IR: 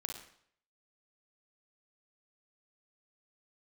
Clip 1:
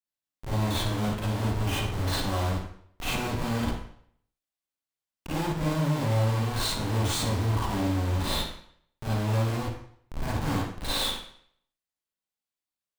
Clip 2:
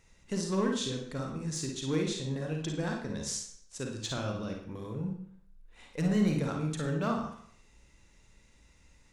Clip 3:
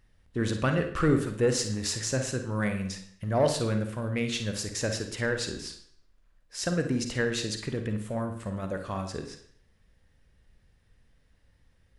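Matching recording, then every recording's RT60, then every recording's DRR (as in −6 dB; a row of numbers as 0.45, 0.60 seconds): 2; 0.60, 0.60, 0.60 seconds; −7.5, 1.5, 6.0 decibels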